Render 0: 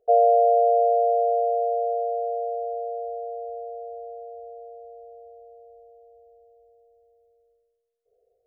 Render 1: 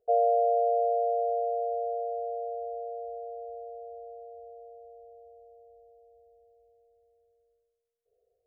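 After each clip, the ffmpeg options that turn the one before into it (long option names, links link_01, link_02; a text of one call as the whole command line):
ffmpeg -i in.wav -af "equalizer=frequency=75:width=0.31:gain=6,volume=-7.5dB" out.wav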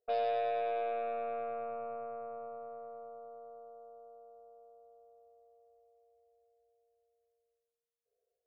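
ffmpeg -i in.wav -af "aeval=exprs='0.178*(cos(1*acos(clip(val(0)/0.178,-1,1)))-cos(1*PI/2))+0.00794*(cos(2*acos(clip(val(0)/0.178,-1,1)))-cos(2*PI/2))+0.00631*(cos(3*acos(clip(val(0)/0.178,-1,1)))-cos(3*PI/2))+0.00178*(cos(7*acos(clip(val(0)/0.178,-1,1)))-cos(7*PI/2))+0.0112*(cos(8*acos(clip(val(0)/0.178,-1,1)))-cos(8*PI/2))':channel_layout=same,lowshelf=frequency=270:gain=-10,volume=-6.5dB" out.wav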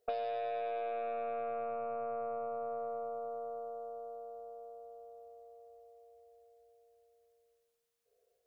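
ffmpeg -i in.wav -af "acompressor=threshold=-43dB:ratio=10,volume=9dB" out.wav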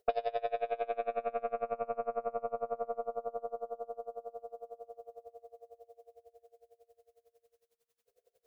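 ffmpeg -i in.wav -af "aeval=exprs='val(0)*pow(10,-26*(0.5-0.5*cos(2*PI*11*n/s))/20)':channel_layout=same,volume=8dB" out.wav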